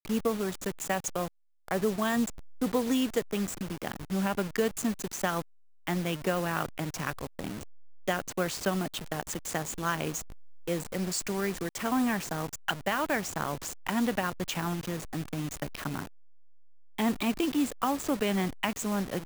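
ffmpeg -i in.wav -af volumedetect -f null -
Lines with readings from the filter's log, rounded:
mean_volume: -31.8 dB
max_volume: -13.3 dB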